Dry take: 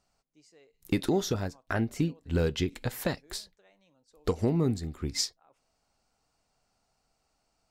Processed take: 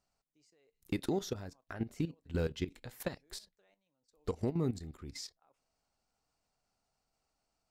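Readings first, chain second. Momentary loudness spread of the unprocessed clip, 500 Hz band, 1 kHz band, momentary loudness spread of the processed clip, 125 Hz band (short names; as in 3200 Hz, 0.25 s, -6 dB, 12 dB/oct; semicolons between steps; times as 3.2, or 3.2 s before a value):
7 LU, -7.5 dB, -9.0 dB, 12 LU, -8.0 dB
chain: level quantiser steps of 13 dB; gain -5 dB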